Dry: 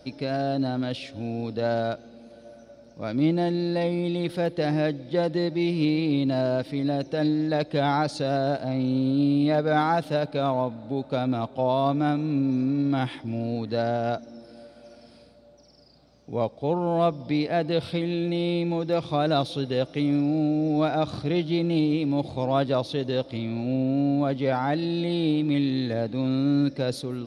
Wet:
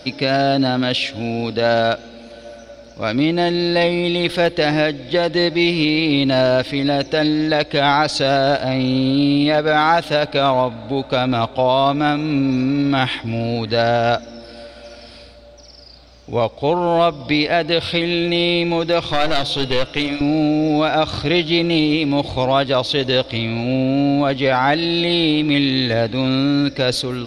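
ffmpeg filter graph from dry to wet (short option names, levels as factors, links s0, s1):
-filter_complex "[0:a]asettb=1/sr,asplit=3[s0][s1][s2];[s0]atrim=end=19.124[s3];[s1]atrim=start=19.12:end=20.21,asetpts=PTS-STARTPTS,afade=t=in:d=0.004:c=qsin,afade=t=out:st=1.086:d=0.004:c=qsin,bandreject=f=144.2:t=h:w=4,bandreject=f=288.4:t=h:w=4,bandreject=f=432.6:t=h:w=4,bandreject=f=576.8:t=h:w=4,bandreject=f=721:t=h:w=4,bandreject=f=865.2:t=h:w=4,bandreject=f=1009.4:t=h:w=4,bandreject=f=1153.6:t=h:w=4,bandreject=f=1297.8:t=h:w=4,bandreject=f=1442:t=h:w=4,bandreject=f=1586.2:t=h:w=4,bandreject=f=1730.4:t=h:w=4,bandreject=f=1874.6:t=h:w=4,bandreject=f=2018.8:t=h:w=4,bandreject=f=2163:t=h:w=4,bandreject=f=2307.2:t=h:w=4,bandreject=f=2451.4:t=h:w=4,bandreject=f=2595.6:t=h:w=4,bandreject=f=2739.8:t=h:w=4,bandreject=f=2884:t=h:w=4,bandreject=f=3028.2:t=h:w=4,bandreject=f=3172.4:t=h:w=4,bandreject=f=3316.6:t=h:w=4,bandreject=f=3460.8:t=h:w=4,bandreject=f=3605:t=h:w=4,bandreject=f=3749.2:t=h:w=4,bandreject=f=3893.4:t=h:w=4,bandreject=f=4037.6:t=h:w=4,bandreject=f=4181.8:t=h:w=4,bandreject=f=4326:t=h:w=4,aeval=exprs='clip(val(0),-1,0.075)':c=same[s4];[s2]atrim=start=20.206[s5];[s3][s4]acrossfade=d=0.004:c1=hsin:c2=qsin[s6];[s6][s5]acrossfade=d=0.004:c1=qsin:c2=hsin,asubboost=boost=8.5:cutoff=53,alimiter=limit=0.133:level=0:latency=1:release=218,equalizer=f=2900:t=o:w=2.7:g=9.5,volume=2.66"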